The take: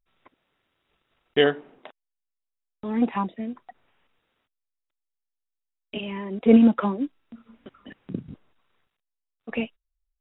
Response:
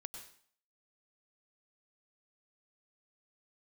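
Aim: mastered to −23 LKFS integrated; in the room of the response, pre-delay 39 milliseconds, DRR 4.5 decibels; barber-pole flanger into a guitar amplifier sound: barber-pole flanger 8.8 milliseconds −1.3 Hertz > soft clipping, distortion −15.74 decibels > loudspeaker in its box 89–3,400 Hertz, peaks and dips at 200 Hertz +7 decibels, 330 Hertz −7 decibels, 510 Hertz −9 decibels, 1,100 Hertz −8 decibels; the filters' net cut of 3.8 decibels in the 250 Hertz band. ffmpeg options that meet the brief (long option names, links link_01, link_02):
-filter_complex "[0:a]equalizer=frequency=250:width_type=o:gain=-7,asplit=2[link_01][link_02];[1:a]atrim=start_sample=2205,adelay=39[link_03];[link_02][link_03]afir=irnorm=-1:irlink=0,volume=-0.5dB[link_04];[link_01][link_04]amix=inputs=2:normalize=0,asplit=2[link_05][link_06];[link_06]adelay=8.8,afreqshift=-1.3[link_07];[link_05][link_07]amix=inputs=2:normalize=1,asoftclip=threshold=-17dB,highpass=89,equalizer=frequency=200:width_type=q:width=4:gain=7,equalizer=frequency=330:width_type=q:width=4:gain=-7,equalizer=frequency=510:width_type=q:width=4:gain=-9,equalizer=frequency=1100:width_type=q:width=4:gain=-8,lowpass=frequency=3400:width=0.5412,lowpass=frequency=3400:width=1.3066,volume=9dB"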